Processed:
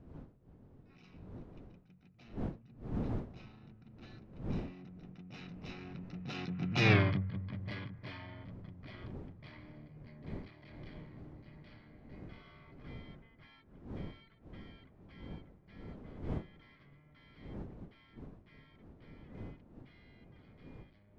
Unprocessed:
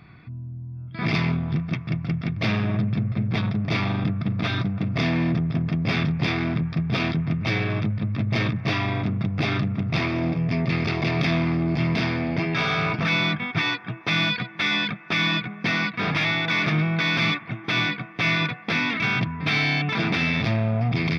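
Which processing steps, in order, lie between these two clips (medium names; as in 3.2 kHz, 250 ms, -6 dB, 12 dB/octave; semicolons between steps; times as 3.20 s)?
Doppler pass-by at 6.93 s, 32 m/s, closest 2.3 m; wind noise 240 Hz -49 dBFS; trim +1 dB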